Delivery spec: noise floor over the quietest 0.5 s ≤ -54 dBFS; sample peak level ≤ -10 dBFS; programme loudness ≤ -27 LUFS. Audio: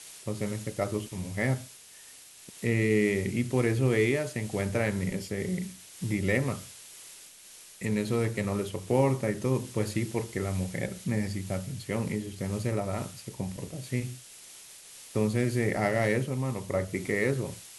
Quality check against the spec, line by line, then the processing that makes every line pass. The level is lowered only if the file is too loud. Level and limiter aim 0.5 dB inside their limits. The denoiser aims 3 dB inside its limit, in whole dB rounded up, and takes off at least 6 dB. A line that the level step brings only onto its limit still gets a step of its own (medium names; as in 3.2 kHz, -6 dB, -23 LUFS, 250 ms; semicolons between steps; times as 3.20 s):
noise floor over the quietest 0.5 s -51 dBFS: fail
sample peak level -12.0 dBFS: pass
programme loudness -30.0 LUFS: pass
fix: noise reduction 6 dB, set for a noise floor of -51 dBFS